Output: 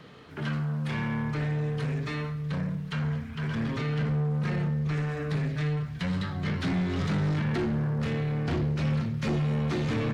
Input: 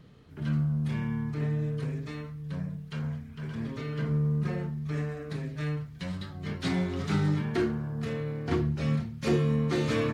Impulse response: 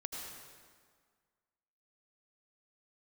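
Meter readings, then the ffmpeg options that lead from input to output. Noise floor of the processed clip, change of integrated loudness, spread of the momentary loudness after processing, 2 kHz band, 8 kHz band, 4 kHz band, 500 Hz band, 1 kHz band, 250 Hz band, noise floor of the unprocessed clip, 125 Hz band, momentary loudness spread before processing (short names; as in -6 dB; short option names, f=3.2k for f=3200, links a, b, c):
-38 dBFS, +1.5 dB, 4 LU, +3.5 dB, n/a, +2.0 dB, -1.5 dB, +3.0 dB, +1.0 dB, -45 dBFS, +2.0 dB, 10 LU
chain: -filter_complex "[0:a]acrossover=split=380|2200[a][b][c];[a]acompressor=threshold=-29dB:ratio=4[d];[b]acompressor=threshold=-44dB:ratio=4[e];[c]acompressor=threshold=-50dB:ratio=4[f];[d][e][f]amix=inputs=3:normalize=0,asubboost=boost=4:cutoff=200,asplit=2[g][h];[h]highpass=f=720:p=1,volume=26dB,asoftclip=type=tanh:threshold=-14dB[i];[g][i]amix=inputs=2:normalize=0,lowpass=f=3k:p=1,volume=-6dB,asplit=2[j][k];[1:a]atrim=start_sample=2205[l];[k][l]afir=irnorm=-1:irlink=0,volume=-13dB[m];[j][m]amix=inputs=2:normalize=0,volume=-6.5dB"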